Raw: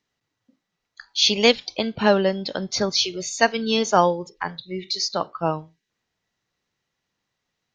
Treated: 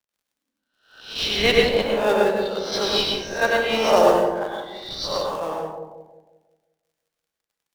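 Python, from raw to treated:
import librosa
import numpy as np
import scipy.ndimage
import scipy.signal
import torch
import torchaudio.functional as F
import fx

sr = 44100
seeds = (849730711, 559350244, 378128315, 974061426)

p1 = fx.spec_swells(x, sr, rise_s=0.62)
p2 = scipy.signal.sosfilt(scipy.signal.butter(2, 530.0, 'highpass', fs=sr, output='sos'), p1)
p3 = fx.high_shelf(p2, sr, hz=3300.0, db=-7.5)
p4 = fx.sample_hold(p3, sr, seeds[0], rate_hz=2400.0, jitter_pct=20)
p5 = p3 + (p4 * librosa.db_to_amplitude(-10.0))
p6 = fx.rotary_switch(p5, sr, hz=1.0, then_hz=5.0, switch_at_s=4.54)
p7 = fx.formant_shift(p6, sr, semitones=-2)
p8 = p7 + fx.echo_bbd(p7, sr, ms=178, stages=1024, feedback_pct=54, wet_db=-4.5, dry=0)
p9 = fx.dmg_crackle(p8, sr, seeds[1], per_s=64.0, level_db=-45.0)
p10 = fx.rev_plate(p9, sr, seeds[2], rt60_s=0.68, hf_ratio=0.75, predelay_ms=85, drr_db=-0.5)
y = fx.band_widen(p10, sr, depth_pct=40)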